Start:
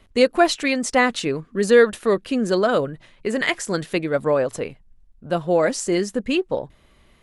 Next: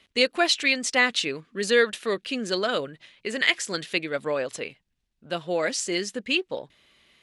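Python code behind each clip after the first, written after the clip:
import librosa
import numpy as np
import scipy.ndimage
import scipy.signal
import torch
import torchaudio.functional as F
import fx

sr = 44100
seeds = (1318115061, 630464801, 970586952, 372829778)

y = fx.weighting(x, sr, curve='D')
y = F.gain(torch.from_numpy(y), -7.5).numpy()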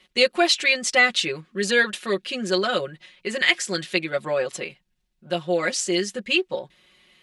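y = x + 0.92 * np.pad(x, (int(5.5 * sr / 1000.0), 0))[:len(x)]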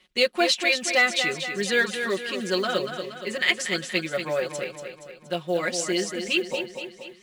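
y = fx.echo_feedback(x, sr, ms=236, feedback_pct=53, wet_db=-8.0)
y = fx.quant_float(y, sr, bits=4)
y = F.gain(torch.from_numpy(y), -3.0).numpy()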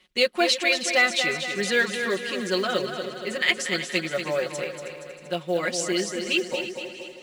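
y = fx.echo_feedback(x, sr, ms=317, feedback_pct=49, wet_db=-13.5)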